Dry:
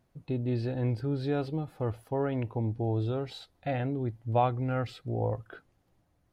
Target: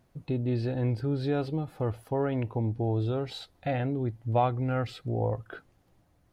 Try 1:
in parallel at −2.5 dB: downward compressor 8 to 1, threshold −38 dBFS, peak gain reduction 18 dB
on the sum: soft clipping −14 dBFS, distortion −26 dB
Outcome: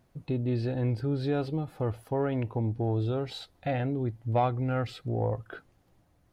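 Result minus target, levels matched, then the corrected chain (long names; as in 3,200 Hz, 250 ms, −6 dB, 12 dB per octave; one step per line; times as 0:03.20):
soft clipping: distortion +10 dB
in parallel at −2.5 dB: downward compressor 8 to 1, threshold −38 dBFS, peak gain reduction 18 dB
on the sum: soft clipping −8 dBFS, distortion −37 dB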